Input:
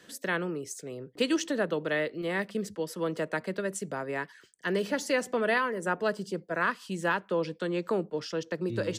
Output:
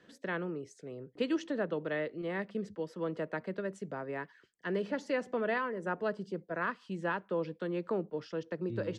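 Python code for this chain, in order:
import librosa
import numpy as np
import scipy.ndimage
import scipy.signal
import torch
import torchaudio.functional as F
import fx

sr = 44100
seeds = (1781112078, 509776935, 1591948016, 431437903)

y = fx.spacing_loss(x, sr, db_at_10k=22)
y = y * librosa.db_to_amplitude(-3.5)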